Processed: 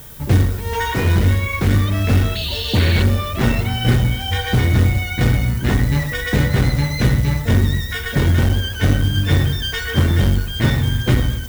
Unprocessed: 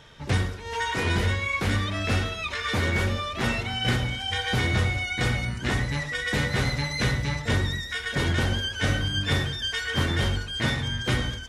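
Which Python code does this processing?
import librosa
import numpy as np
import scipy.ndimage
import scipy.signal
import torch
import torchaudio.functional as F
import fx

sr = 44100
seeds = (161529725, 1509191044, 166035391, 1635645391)

p1 = fx.tilt_shelf(x, sr, db=3.0, hz=760.0)
p2 = fx.dmg_noise_colour(p1, sr, seeds[0], colour='violet', level_db=-45.0)
p3 = fx.low_shelf(p2, sr, hz=160.0, db=7.0)
p4 = fx.rider(p3, sr, range_db=10, speed_s=0.5)
p5 = p3 + (p4 * 10.0 ** (0.5 / 20.0))
p6 = fx.spec_paint(p5, sr, seeds[1], shape='noise', start_s=2.35, length_s=0.68, low_hz=1500.0, high_hz=4600.0, level_db=-24.0)
p7 = fx.quant_companded(p6, sr, bits=6)
p8 = fx.spec_box(p7, sr, start_s=2.36, length_s=0.4, low_hz=1000.0, high_hz=2600.0, gain_db=-18)
p9 = p8 + fx.echo_single(p8, sr, ms=264, db=-23.0, dry=0)
p10 = fx.transformer_sat(p9, sr, knee_hz=170.0)
y = p10 * 10.0 ** (-1.0 / 20.0)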